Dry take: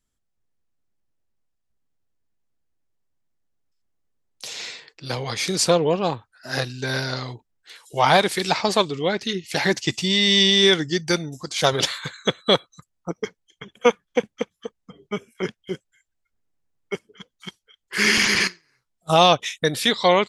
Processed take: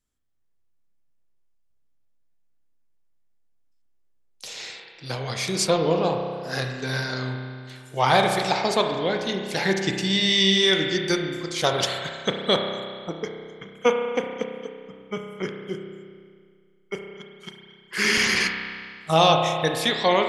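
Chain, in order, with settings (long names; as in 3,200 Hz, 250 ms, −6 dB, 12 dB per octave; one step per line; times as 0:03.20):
spring reverb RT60 2 s, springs 31 ms, chirp 45 ms, DRR 3 dB
level −3.5 dB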